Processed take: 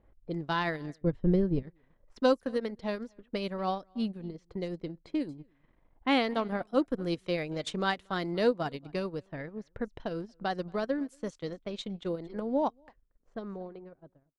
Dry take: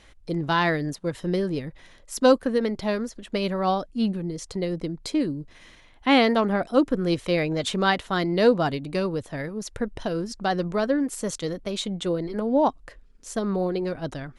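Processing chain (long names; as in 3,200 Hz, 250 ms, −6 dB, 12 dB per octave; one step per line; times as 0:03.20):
fade-out on the ending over 1.72 s
single-tap delay 232 ms −22 dB
low-pass that shuts in the quiet parts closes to 710 Hz, open at −21.5 dBFS
transient designer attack +2 dB, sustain −11 dB
0:01.01–0:01.63: spectral tilt −4 dB per octave
level −8.5 dB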